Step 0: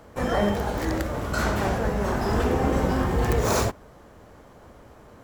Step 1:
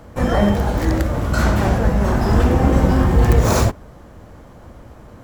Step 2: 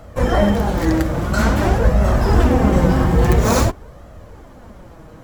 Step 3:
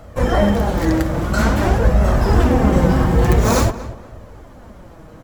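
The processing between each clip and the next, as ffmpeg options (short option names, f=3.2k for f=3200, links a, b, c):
-af "lowshelf=f=250:g=8,bandreject=f=420:w=12,volume=4dB"
-af "flanger=delay=1.5:depth=4.8:regen=41:speed=0.49:shape=sinusoidal,volume=5dB"
-filter_complex "[0:a]asplit=2[a][b];[b]adelay=236,lowpass=f=2.7k:p=1,volume=-15dB,asplit=2[c][d];[d]adelay=236,lowpass=f=2.7k:p=1,volume=0.32,asplit=2[e][f];[f]adelay=236,lowpass=f=2.7k:p=1,volume=0.32[g];[a][c][e][g]amix=inputs=4:normalize=0"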